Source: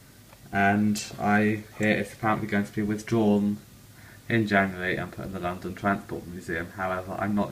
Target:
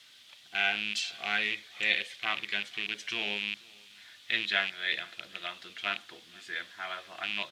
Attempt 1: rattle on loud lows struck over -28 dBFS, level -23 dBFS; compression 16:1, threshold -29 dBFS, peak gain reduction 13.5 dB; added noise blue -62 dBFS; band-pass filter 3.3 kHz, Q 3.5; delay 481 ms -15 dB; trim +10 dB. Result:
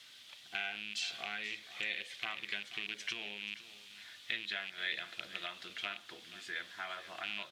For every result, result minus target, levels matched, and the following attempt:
compression: peak gain reduction +13.5 dB; echo-to-direct +10 dB
rattle on loud lows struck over -28 dBFS, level -23 dBFS; added noise blue -62 dBFS; band-pass filter 3.3 kHz, Q 3.5; delay 481 ms -15 dB; trim +10 dB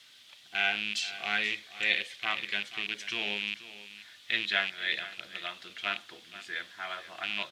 echo-to-direct +10 dB
rattle on loud lows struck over -28 dBFS, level -23 dBFS; added noise blue -62 dBFS; band-pass filter 3.3 kHz, Q 3.5; delay 481 ms -25 dB; trim +10 dB

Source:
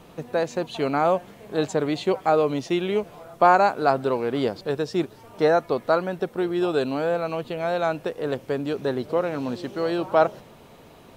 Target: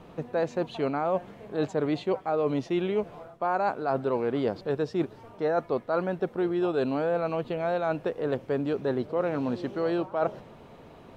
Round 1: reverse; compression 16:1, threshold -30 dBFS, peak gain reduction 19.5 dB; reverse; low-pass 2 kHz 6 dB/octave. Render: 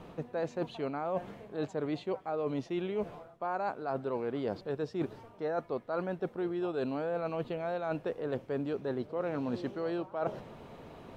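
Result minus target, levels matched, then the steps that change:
compression: peak gain reduction +7.5 dB
change: compression 16:1, threshold -22 dBFS, peak gain reduction 12 dB

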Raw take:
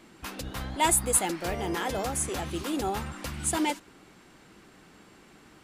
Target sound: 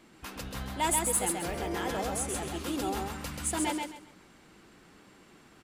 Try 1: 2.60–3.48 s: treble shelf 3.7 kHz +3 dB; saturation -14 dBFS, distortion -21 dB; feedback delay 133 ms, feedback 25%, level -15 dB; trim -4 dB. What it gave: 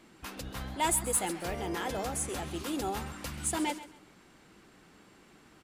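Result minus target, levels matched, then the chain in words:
echo-to-direct -11.5 dB
2.60–3.48 s: treble shelf 3.7 kHz +3 dB; saturation -14 dBFS, distortion -21 dB; feedback delay 133 ms, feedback 25%, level -3.5 dB; trim -4 dB

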